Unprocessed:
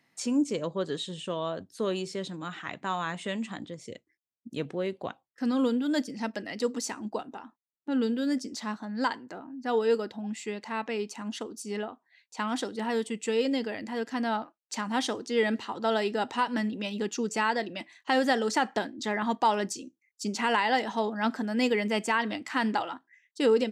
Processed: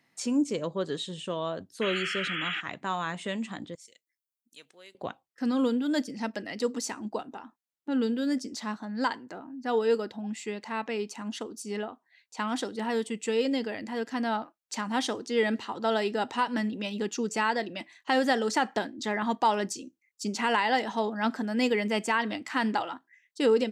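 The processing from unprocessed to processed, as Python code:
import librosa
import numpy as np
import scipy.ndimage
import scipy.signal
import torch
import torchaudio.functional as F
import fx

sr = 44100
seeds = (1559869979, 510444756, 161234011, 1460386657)

y = fx.spec_paint(x, sr, seeds[0], shape='noise', start_s=1.81, length_s=0.8, low_hz=1200.0, high_hz=3400.0, level_db=-33.0)
y = fx.differentiator(y, sr, at=(3.75, 4.95))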